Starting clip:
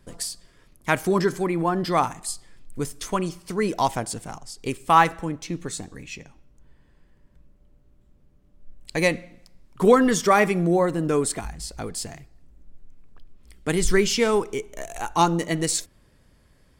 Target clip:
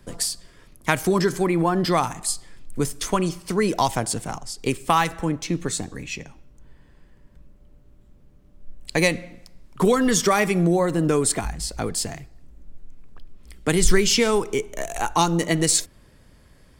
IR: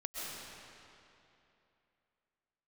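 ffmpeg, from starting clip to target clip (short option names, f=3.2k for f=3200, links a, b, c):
-filter_complex "[0:a]acrossover=split=130|3000[a][b][c];[b]acompressor=threshold=-23dB:ratio=4[d];[a][d][c]amix=inputs=3:normalize=0,volume=5.5dB"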